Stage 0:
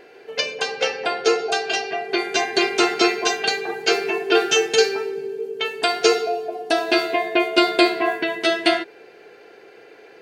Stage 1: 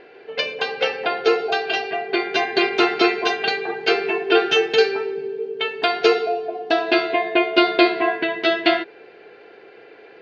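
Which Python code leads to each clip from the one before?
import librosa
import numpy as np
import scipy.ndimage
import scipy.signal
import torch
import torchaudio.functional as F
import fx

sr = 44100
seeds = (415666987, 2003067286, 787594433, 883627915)

y = scipy.signal.sosfilt(scipy.signal.butter(4, 4100.0, 'lowpass', fs=sr, output='sos'), x)
y = F.gain(torch.from_numpy(y), 1.0).numpy()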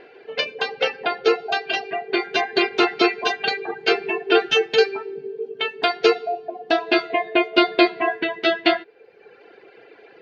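y = fx.dereverb_blind(x, sr, rt60_s=0.94)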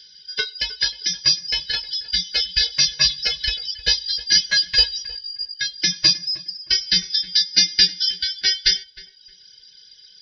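y = fx.band_shuffle(x, sr, order='4321')
y = fx.echo_filtered(y, sr, ms=311, feedback_pct=26, hz=1900.0, wet_db=-16.5)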